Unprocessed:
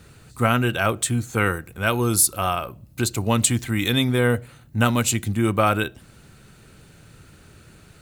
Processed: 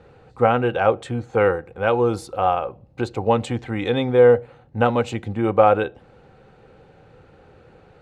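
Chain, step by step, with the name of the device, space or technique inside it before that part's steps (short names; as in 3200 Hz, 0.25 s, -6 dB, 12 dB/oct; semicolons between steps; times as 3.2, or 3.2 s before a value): inside a cardboard box (LPF 3000 Hz 12 dB/oct; small resonant body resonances 510/770 Hz, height 17 dB, ringing for 30 ms); gain -4.5 dB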